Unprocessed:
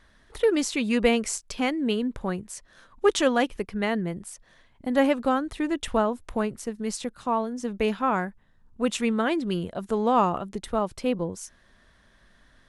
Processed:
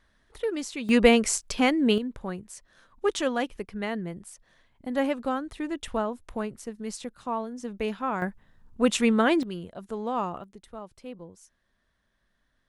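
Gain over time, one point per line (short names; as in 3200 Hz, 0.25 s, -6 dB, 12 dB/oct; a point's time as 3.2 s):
-7.5 dB
from 0.89 s +3.5 dB
from 1.98 s -5 dB
from 8.22 s +3 dB
from 9.43 s -8 dB
from 10.44 s -15 dB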